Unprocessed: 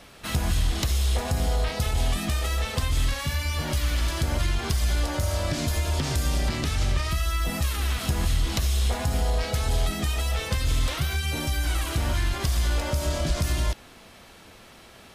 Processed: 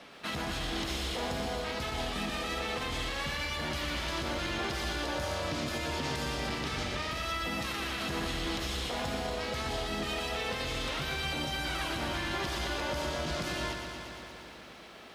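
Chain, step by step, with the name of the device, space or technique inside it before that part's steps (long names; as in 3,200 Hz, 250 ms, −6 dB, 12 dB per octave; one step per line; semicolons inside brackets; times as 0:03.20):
DJ mixer with the lows and highs turned down (three-way crossover with the lows and the highs turned down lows −18 dB, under 160 Hz, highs −13 dB, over 5,300 Hz; brickwall limiter −25 dBFS, peak gain reduction 9 dB)
feedback echo at a low word length 118 ms, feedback 80%, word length 11 bits, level −7.5 dB
level −1 dB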